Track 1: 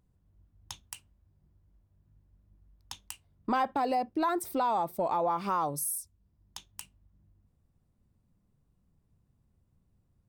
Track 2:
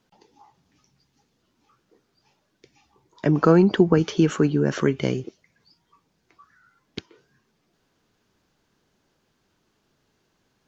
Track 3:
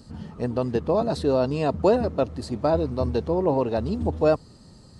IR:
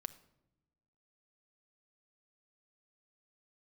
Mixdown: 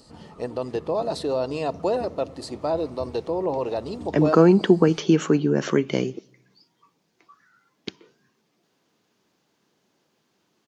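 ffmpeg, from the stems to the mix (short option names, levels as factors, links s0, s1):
-filter_complex "[1:a]highpass=170,adelay=900,volume=0.891,asplit=2[s0][s1];[s1]volume=0.447[s2];[2:a]bandreject=f=1600:w=20,volume=0.944,asplit=2[s3][s4];[s4]volume=0.562[s5];[s3]highpass=310,alimiter=limit=0.0891:level=0:latency=1,volume=1[s6];[3:a]atrim=start_sample=2205[s7];[s2][s5]amix=inputs=2:normalize=0[s8];[s8][s7]afir=irnorm=-1:irlink=0[s9];[s0][s6][s9]amix=inputs=3:normalize=0,equalizer=f=1500:t=o:w=0.48:g=-3.5"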